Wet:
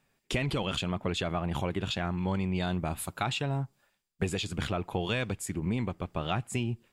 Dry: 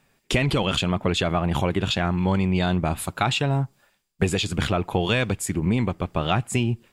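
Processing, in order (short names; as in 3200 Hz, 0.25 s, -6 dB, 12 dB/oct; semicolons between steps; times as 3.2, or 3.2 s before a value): 2.59–3.24 high shelf 10000 Hz +7 dB; gain -8.5 dB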